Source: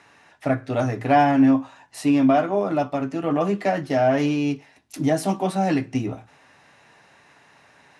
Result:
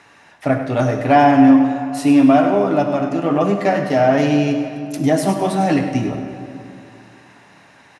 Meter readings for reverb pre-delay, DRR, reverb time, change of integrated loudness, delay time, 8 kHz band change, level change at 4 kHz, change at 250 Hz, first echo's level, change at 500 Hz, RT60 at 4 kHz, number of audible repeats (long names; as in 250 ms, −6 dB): 36 ms, 5.0 dB, 2.7 s, +6.0 dB, 101 ms, +5.5 dB, +5.5 dB, +6.5 dB, −11.0 dB, +6.0 dB, 1.8 s, 1